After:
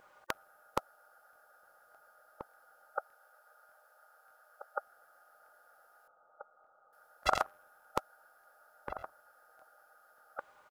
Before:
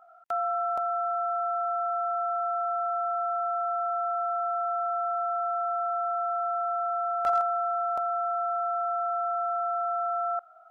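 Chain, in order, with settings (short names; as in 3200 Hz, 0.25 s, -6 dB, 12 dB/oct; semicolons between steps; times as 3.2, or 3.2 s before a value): 2.98–4.78 HPF 450 Hz 24 dB/oct; spectral gate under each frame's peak -20 dB weak; 6.06–6.93 steep low-pass 1400 Hz 96 dB/oct; outdoor echo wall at 280 m, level -10 dB; crackling interface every 0.59 s, samples 1024, repeat, from 0.72; gain +15 dB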